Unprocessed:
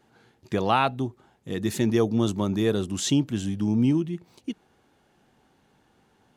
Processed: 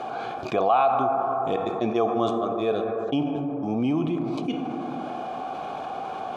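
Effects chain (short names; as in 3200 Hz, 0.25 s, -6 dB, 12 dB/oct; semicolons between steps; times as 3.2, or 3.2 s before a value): 1.56–3.87 gate -21 dBFS, range -46 dB; vowel filter a; low shelf 150 Hz +5.5 dB; notch 2700 Hz, Q 6.2; plate-style reverb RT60 2 s, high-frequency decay 0.3×, DRR 9 dB; fast leveller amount 70%; gain +7 dB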